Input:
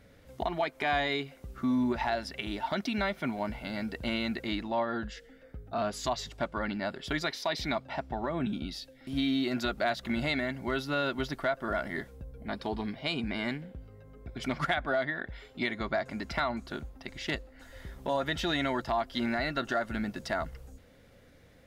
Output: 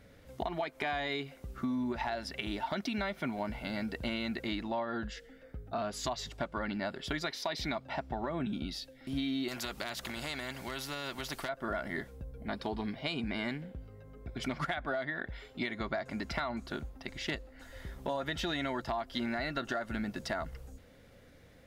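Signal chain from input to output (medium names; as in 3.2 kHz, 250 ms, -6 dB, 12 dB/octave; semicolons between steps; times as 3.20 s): compression, threshold -31 dBFS, peak gain reduction 7.5 dB; 9.48–11.49 s: spectrum-flattening compressor 2:1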